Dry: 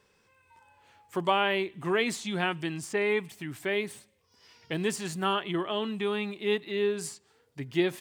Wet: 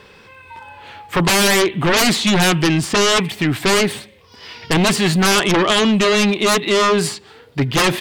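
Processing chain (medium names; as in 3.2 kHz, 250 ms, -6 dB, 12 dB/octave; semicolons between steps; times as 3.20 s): resonant high shelf 5 kHz -7.5 dB, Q 1.5; sine folder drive 18 dB, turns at -11 dBFS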